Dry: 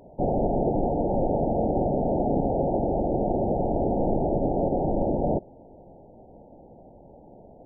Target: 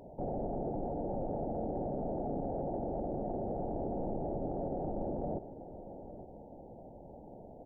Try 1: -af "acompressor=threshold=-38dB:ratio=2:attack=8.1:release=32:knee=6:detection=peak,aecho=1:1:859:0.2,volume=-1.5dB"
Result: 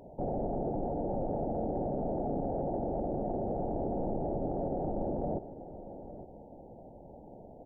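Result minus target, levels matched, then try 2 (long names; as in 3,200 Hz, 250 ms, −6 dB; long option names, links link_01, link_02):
downward compressor: peak gain reduction −3 dB
-af "acompressor=threshold=-44dB:ratio=2:attack=8.1:release=32:knee=6:detection=peak,aecho=1:1:859:0.2,volume=-1.5dB"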